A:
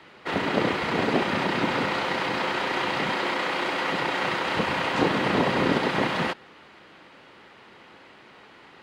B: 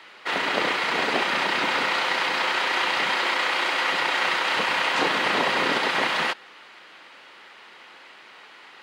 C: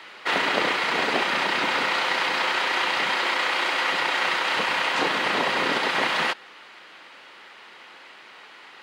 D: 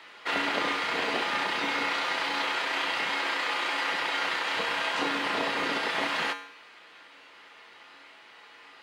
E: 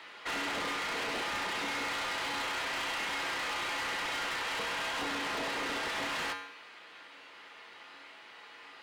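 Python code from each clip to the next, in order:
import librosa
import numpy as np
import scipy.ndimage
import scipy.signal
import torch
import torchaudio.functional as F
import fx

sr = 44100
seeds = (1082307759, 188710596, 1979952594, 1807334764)

y1 = fx.highpass(x, sr, hz=1300.0, slope=6)
y1 = y1 * librosa.db_to_amplitude(6.5)
y2 = fx.rider(y1, sr, range_db=4, speed_s=0.5)
y3 = fx.comb_fb(y2, sr, f0_hz=94.0, decay_s=0.64, harmonics='odd', damping=0.0, mix_pct=80)
y3 = y3 * librosa.db_to_amplitude(6.0)
y4 = 10.0 ** (-32.0 / 20.0) * np.tanh(y3 / 10.0 ** (-32.0 / 20.0))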